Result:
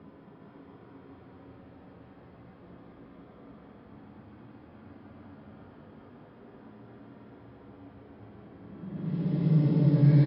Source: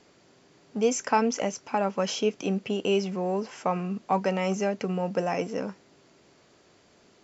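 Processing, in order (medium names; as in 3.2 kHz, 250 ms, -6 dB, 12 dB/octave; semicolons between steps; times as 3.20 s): Paulstretch 15×, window 0.10 s, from 0.31 s; level-controlled noise filter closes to 1.6 kHz, open at -28.5 dBFS; wide varispeed 0.705×; delay 411 ms -3.5 dB; trim +7.5 dB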